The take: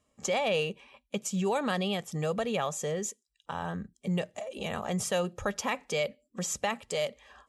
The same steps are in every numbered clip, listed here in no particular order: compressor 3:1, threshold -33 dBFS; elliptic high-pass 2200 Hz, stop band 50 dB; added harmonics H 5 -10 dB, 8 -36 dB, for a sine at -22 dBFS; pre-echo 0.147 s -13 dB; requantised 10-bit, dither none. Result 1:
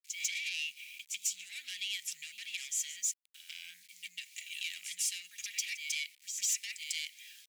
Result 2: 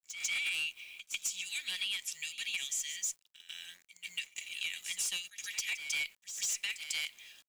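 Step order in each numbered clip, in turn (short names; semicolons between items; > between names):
pre-echo > requantised > compressor > added harmonics > elliptic high-pass; elliptic high-pass > added harmonics > requantised > pre-echo > compressor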